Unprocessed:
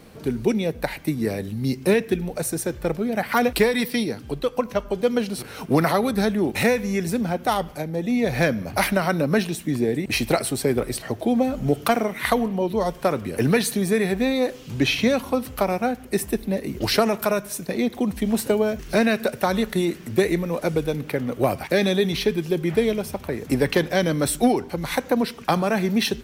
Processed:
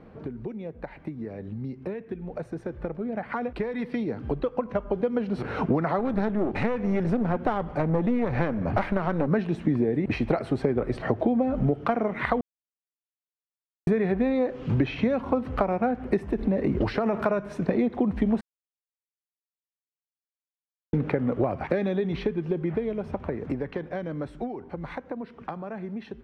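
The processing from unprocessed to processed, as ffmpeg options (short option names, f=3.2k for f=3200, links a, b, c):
-filter_complex "[0:a]asettb=1/sr,asplit=3[a][b][c];[a]atrim=end=5.994[d];[b]atrim=start=5.99:end=9.28,asetpts=PTS-STARTPTS,afade=t=in:d=0.004:c=qsin,afade=t=out:st=3.286:d=0.004:c=qsin,aeval=exprs='clip(val(0),-1,0.0355)':c=same[e];[c]atrim=start=9.276[f];[d][e]acrossfade=d=0.004:c1=hsin:c2=qsin[g];[g][f]acrossfade=d=0.004:c1=qsin:c2=hsin,asettb=1/sr,asplit=3[h][i][j];[h]atrim=end=16.244[k];[i]atrim=start=16.24:end=17.19,asetpts=PTS-STARTPTS,afade=t=in:d=0.004:c=qsin,afade=t=out:st=0.946:d=0.004:c=qsin,acompressor=threshold=-24dB:ratio=6:attack=3.2:release=140:knee=1:detection=peak[l];[j]atrim=start=17.186[m];[k][l]acrossfade=d=0.004:c1=hsin:c2=qsin[n];[n][m]acrossfade=d=0.004:c1=qsin:c2=hsin,asplit=5[o][p][q][r][s];[o]atrim=end=12.41,asetpts=PTS-STARTPTS,afade=t=out:st=12.406:d=0.004:c=hsin[t];[p]atrim=start=12.41:end=13.87,asetpts=PTS-STARTPTS,volume=0[u];[q]atrim=start=13.87:end=18.41,asetpts=PTS-STARTPTS,afade=t=in:d=0.004:c=hsin,afade=t=out:st=4.536:d=0.004:c=hsin[v];[r]atrim=start=18.41:end=20.93,asetpts=PTS-STARTPTS,volume=0[w];[s]atrim=start=20.93,asetpts=PTS-STARTPTS,afade=t=in:d=0.004:c=hsin[x];[t][u][v][w][x]concat=n=5:v=0:a=1,acompressor=threshold=-30dB:ratio=12,lowpass=1.5k,dynaudnorm=f=390:g=21:m=11.5dB,volume=-1.5dB"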